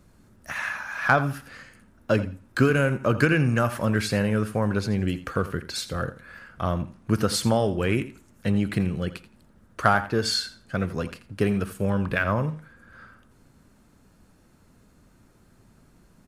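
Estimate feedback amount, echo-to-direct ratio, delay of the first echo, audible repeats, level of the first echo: 18%, -15.0 dB, 84 ms, 2, -15.0 dB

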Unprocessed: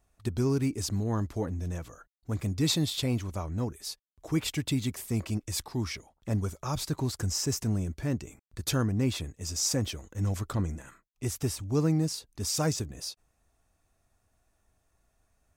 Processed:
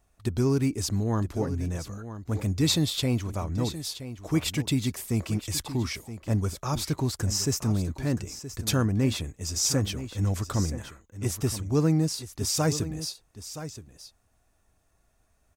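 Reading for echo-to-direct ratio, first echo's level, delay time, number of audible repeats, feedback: -12.5 dB, -12.5 dB, 0.972 s, 1, no steady repeat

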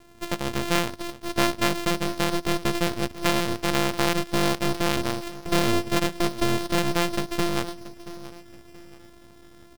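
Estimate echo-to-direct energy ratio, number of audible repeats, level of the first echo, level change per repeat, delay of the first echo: -15.5 dB, 3, -16.0 dB, -9.0 dB, 0.679 s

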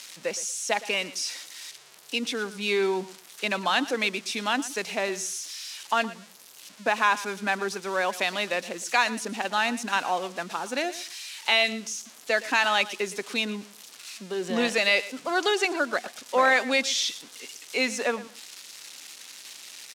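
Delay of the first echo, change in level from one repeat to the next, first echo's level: 0.116 s, -15.0 dB, -17.0 dB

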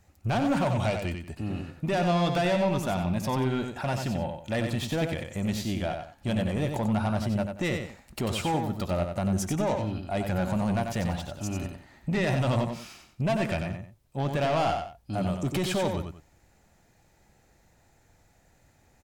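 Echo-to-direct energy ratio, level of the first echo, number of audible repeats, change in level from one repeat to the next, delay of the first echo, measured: -5.5 dB, -6.0 dB, 2, -11.0 dB, 92 ms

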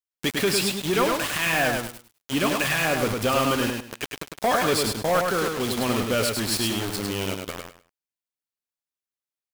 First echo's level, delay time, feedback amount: -4.0 dB, 0.103 s, 23%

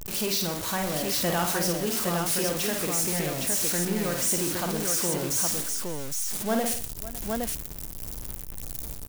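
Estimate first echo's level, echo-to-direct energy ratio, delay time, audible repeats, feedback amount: -5.0 dB, -0.5 dB, 52 ms, 5, no steady repeat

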